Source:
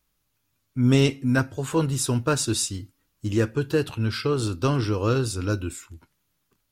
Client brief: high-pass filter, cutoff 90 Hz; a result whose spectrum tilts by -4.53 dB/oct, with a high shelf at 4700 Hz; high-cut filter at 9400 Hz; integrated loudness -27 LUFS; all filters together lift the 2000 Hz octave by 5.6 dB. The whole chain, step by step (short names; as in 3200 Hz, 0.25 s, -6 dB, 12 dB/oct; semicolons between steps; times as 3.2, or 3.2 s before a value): HPF 90 Hz; LPF 9400 Hz; bell 2000 Hz +7.5 dB; high shelf 4700 Hz +4.5 dB; gain -3.5 dB